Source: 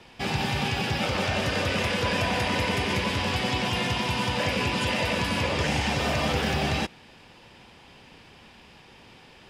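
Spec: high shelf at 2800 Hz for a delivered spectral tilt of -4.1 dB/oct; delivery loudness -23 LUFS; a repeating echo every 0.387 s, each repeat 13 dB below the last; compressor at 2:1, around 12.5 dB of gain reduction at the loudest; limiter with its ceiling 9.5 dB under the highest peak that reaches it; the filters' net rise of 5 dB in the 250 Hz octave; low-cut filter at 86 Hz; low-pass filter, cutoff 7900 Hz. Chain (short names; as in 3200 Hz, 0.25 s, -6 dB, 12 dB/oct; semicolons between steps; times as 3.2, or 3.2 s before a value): HPF 86 Hz; LPF 7900 Hz; bell 250 Hz +6.5 dB; high shelf 2800 Hz +5.5 dB; compressor 2:1, threshold -44 dBFS; limiter -32.5 dBFS; feedback echo 0.387 s, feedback 22%, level -13 dB; gain +18.5 dB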